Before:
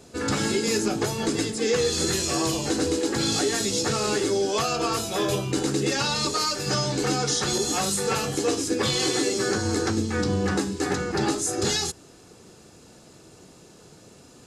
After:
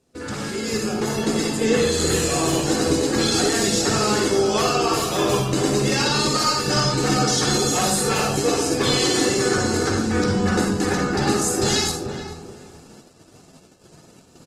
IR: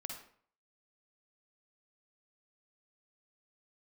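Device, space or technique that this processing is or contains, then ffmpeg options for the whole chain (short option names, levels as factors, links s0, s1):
speakerphone in a meeting room: -filter_complex "[0:a]asettb=1/sr,asplit=3[s0][s1][s2];[s0]atrim=end=1.534[s3];[s1]atrim=start=1.53:end=2.64,asetpts=PTS-STARTPTS,afade=t=in:d=0.004:c=qsin,afade=t=out:st=1.106:d=0.004:c=qsin,equalizer=f=5300:w=3.1:g=-6.5[s4];[s2]atrim=start=2.636[s5];[s3][s4]acrossfade=d=0.004:c1=hsin:c2=qsin[s6];[s6][s5]acrossfade=d=0.004:c1=qsin:c2=hsin,asplit=2[s7][s8];[s8]adelay=430,lowpass=f=1100:p=1,volume=0.501,asplit=2[s9][s10];[s10]adelay=430,lowpass=f=1100:p=1,volume=0.26,asplit=2[s11][s12];[s12]adelay=430,lowpass=f=1100:p=1,volume=0.26[s13];[s7][s9][s11][s13]amix=inputs=4:normalize=0[s14];[1:a]atrim=start_sample=2205[s15];[s14][s15]afir=irnorm=-1:irlink=0,dynaudnorm=f=210:g=11:m=2.24,agate=range=0.251:threshold=0.00708:ratio=16:detection=peak" -ar 48000 -c:a libopus -b:a 20k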